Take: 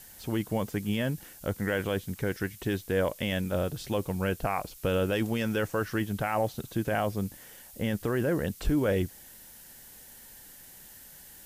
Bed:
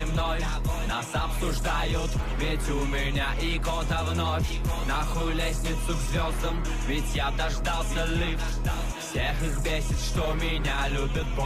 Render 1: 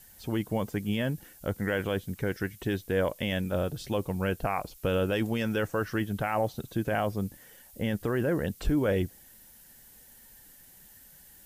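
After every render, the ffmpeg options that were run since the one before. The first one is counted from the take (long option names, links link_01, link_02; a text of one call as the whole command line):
ffmpeg -i in.wav -af "afftdn=noise_reduction=6:noise_floor=-51" out.wav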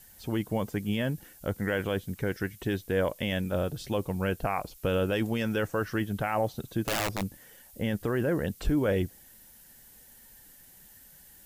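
ffmpeg -i in.wav -filter_complex "[0:a]asplit=3[link_01][link_02][link_03];[link_01]afade=type=out:start_time=6.81:duration=0.02[link_04];[link_02]aeval=exprs='(mod(13.3*val(0)+1,2)-1)/13.3':channel_layout=same,afade=type=in:start_time=6.81:duration=0.02,afade=type=out:start_time=7.21:duration=0.02[link_05];[link_03]afade=type=in:start_time=7.21:duration=0.02[link_06];[link_04][link_05][link_06]amix=inputs=3:normalize=0" out.wav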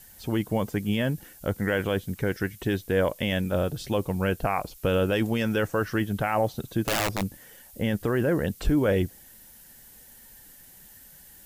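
ffmpeg -i in.wav -af "volume=3.5dB" out.wav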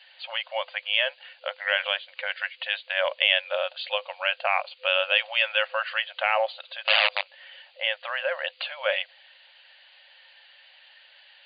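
ffmpeg -i in.wav -af "afftfilt=real='re*between(b*sr/4096,510,4800)':imag='im*between(b*sr/4096,510,4800)':win_size=4096:overlap=0.75,equalizer=frequency=2800:width=1.4:gain=14.5" out.wav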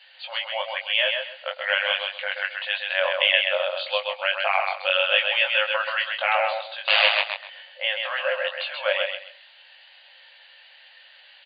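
ffmpeg -i in.wav -filter_complex "[0:a]asplit=2[link_01][link_02];[link_02]adelay=21,volume=-3.5dB[link_03];[link_01][link_03]amix=inputs=2:normalize=0,aecho=1:1:131|262|393:0.596|0.143|0.0343" out.wav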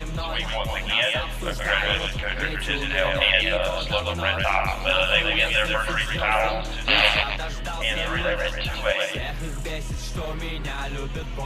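ffmpeg -i in.wav -i bed.wav -filter_complex "[1:a]volume=-3dB[link_01];[0:a][link_01]amix=inputs=2:normalize=0" out.wav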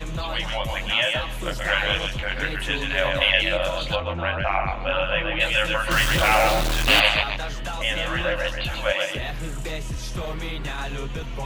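ffmpeg -i in.wav -filter_complex "[0:a]asplit=3[link_01][link_02][link_03];[link_01]afade=type=out:start_time=3.95:duration=0.02[link_04];[link_02]lowpass=2100,afade=type=in:start_time=3.95:duration=0.02,afade=type=out:start_time=5.39:duration=0.02[link_05];[link_03]afade=type=in:start_time=5.39:duration=0.02[link_06];[link_04][link_05][link_06]amix=inputs=3:normalize=0,asettb=1/sr,asplit=3[link_07][link_08][link_09];[link_07]atrim=end=5.914[link_10];[link_08]atrim=start=5.91:end=7,asetpts=PTS-STARTPTS,afade=type=in:duration=0.004:curve=qsin,afade=type=out:start_time=1.086:duration=0.004:curve=qsin,aeval=exprs='val(0)+0.5*0.106*sgn(val(0))':channel_layout=same[link_11];[link_09]atrim=start=6.996[link_12];[link_10][link_11]acrossfade=duration=0.004:curve1=hsin:curve2=qsin[link_13];[link_13][link_12]acrossfade=duration=0.004:curve1=qsin:curve2=hsin" out.wav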